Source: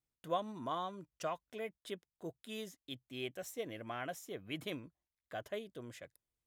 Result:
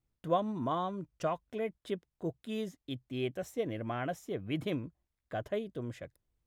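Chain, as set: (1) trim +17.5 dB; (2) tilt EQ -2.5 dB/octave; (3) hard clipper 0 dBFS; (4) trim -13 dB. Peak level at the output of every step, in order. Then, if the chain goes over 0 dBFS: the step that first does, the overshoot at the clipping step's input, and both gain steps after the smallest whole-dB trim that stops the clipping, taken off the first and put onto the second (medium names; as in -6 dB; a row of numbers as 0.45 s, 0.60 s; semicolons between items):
-5.5 dBFS, -4.0 dBFS, -4.0 dBFS, -17.0 dBFS; nothing clips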